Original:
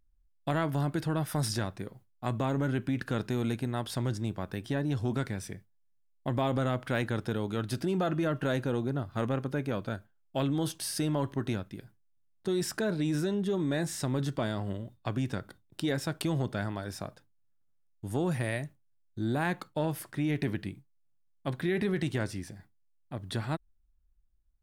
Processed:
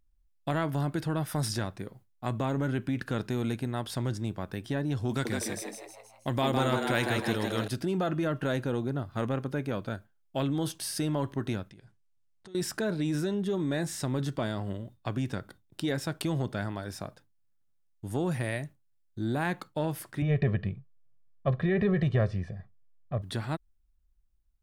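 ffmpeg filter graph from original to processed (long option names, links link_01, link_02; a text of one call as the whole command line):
ffmpeg -i in.wav -filter_complex "[0:a]asettb=1/sr,asplit=3[link_01][link_02][link_03];[link_01]atrim=end=5.094[link_04];[link_02]atrim=start=5.09:end=7.68,asetpts=PTS-STARTPTS,afade=type=in:duration=0.004:curve=qsin,afade=type=out:start_time=2.586:duration=0.004:curve=qsin,highshelf=frequency=2200:gain=9,asplit=7[link_05][link_06][link_07][link_08][link_09][link_10][link_11];[link_06]adelay=159,afreqshift=110,volume=-4dB[link_12];[link_07]adelay=318,afreqshift=220,volume=-10dB[link_13];[link_08]adelay=477,afreqshift=330,volume=-16dB[link_14];[link_09]adelay=636,afreqshift=440,volume=-22.1dB[link_15];[link_10]adelay=795,afreqshift=550,volume=-28.1dB[link_16];[link_11]adelay=954,afreqshift=660,volume=-34.1dB[link_17];[link_05][link_12][link_13][link_14][link_15][link_16][link_17]amix=inputs=7:normalize=0,atrim=end_sample=114219[link_18];[link_03]atrim=start=7.676[link_19];[link_04][link_18]acrossfade=duration=0.004:curve1=hsin:curve2=qsin[link_20];[link_20][link_19]acrossfade=duration=0.004:curve1=qsin:curve2=hsin,asettb=1/sr,asplit=3[link_21][link_22][link_23];[link_21]atrim=end=11.704[link_24];[link_22]atrim=start=11.7:end=12.55,asetpts=PTS-STARTPTS,afade=type=in:duration=0.004:curve=qsin,afade=type=out:start_time=0.846:duration=0.004:curve=qsin,lowpass=frequency=9200:width=0.5412,lowpass=frequency=9200:width=1.3066,equalizer=frequency=270:width_type=o:width=0.74:gain=-5,acompressor=threshold=-48dB:ratio=6:attack=3.2:release=140:knee=1:detection=peak[link_25];[link_23]atrim=start=12.546[link_26];[link_24][link_25]acrossfade=duration=0.004:curve1=hsin:curve2=qsin[link_27];[link_27][link_26]acrossfade=duration=0.004:curve1=qsin:curve2=hsin,asettb=1/sr,asplit=3[link_28][link_29][link_30];[link_28]atrim=end=20.224[link_31];[link_29]atrim=start=20.22:end=23.22,asetpts=PTS-STARTPTS,afade=type=in:duration=0.004:curve=qsin,afade=type=out:start_time=2.996:duration=0.004:curve=qsin,lowpass=3400,tiltshelf=frequency=1300:gain=5,aecho=1:1:1.7:0.84,atrim=end_sample=132300[link_32];[link_30]atrim=start=23.216[link_33];[link_31][link_32]acrossfade=duration=0.004:curve1=hsin:curve2=qsin[link_34];[link_34][link_33]acrossfade=duration=0.004:curve1=qsin:curve2=hsin" out.wav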